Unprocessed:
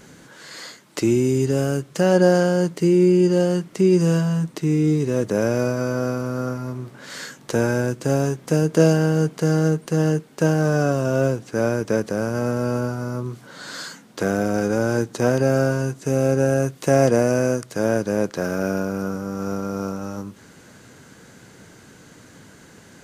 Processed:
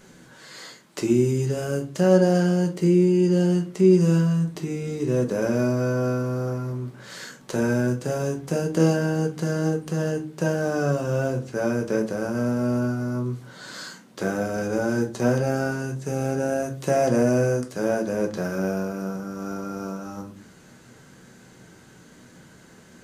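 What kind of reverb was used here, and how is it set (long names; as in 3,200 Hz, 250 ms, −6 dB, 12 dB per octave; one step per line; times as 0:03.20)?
rectangular room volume 200 cubic metres, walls furnished, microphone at 1.1 metres
level −5.5 dB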